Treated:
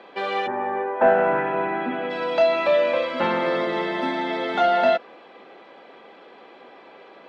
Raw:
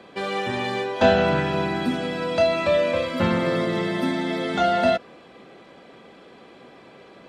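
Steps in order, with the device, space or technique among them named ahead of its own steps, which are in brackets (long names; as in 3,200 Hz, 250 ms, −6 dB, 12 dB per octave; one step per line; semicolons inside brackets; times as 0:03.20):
intercom (band-pass filter 360–3,600 Hz; parametric band 860 Hz +6 dB 0.21 octaves; soft clipping −8 dBFS, distortion −25 dB)
0:00.46–0:02.09: low-pass filter 1,500 Hz → 2,800 Hz 24 dB per octave
level +2 dB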